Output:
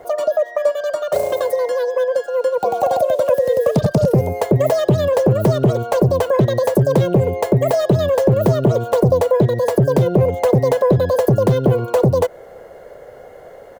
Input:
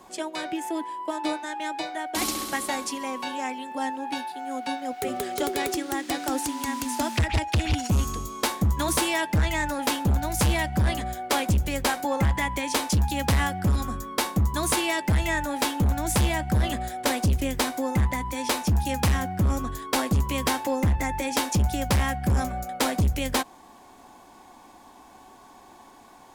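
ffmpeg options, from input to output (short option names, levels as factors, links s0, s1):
-filter_complex "[0:a]firequalizer=gain_entry='entry(150,0);entry(270,9);entry(740,-15)':delay=0.05:min_phase=1,asplit=2[s0][s1];[s1]acompressor=threshold=0.0355:ratio=6,volume=1.26[s2];[s0][s2]amix=inputs=2:normalize=0,asetrate=84231,aresample=44100,volume=1.78"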